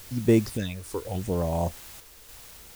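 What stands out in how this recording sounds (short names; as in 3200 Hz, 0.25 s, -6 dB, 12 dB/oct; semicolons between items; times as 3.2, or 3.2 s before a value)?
phasing stages 6, 0.81 Hz, lowest notch 170–4600 Hz; a quantiser's noise floor 8-bit, dither triangular; random-step tremolo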